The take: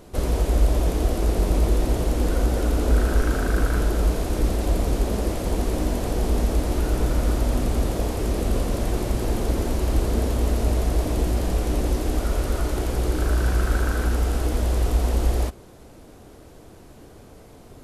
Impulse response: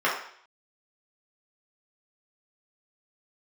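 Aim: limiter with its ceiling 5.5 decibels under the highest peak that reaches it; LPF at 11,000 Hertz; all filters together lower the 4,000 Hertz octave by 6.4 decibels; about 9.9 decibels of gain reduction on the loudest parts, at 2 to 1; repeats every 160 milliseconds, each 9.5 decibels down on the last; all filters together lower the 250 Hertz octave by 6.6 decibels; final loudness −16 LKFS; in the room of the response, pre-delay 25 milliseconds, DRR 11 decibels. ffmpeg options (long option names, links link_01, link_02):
-filter_complex "[0:a]lowpass=11000,equalizer=frequency=250:width_type=o:gain=-9,equalizer=frequency=4000:width_type=o:gain=-8.5,acompressor=threshold=-34dB:ratio=2,alimiter=level_in=0.5dB:limit=-24dB:level=0:latency=1,volume=-0.5dB,aecho=1:1:160|320|480|640:0.335|0.111|0.0365|0.012,asplit=2[link_01][link_02];[1:a]atrim=start_sample=2205,adelay=25[link_03];[link_02][link_03]afir=irnorm=-1:irlink=0,volume=-27dB[link_04];[link_01][link_04]amix=inputs=2:normalize=0,volume=19dB"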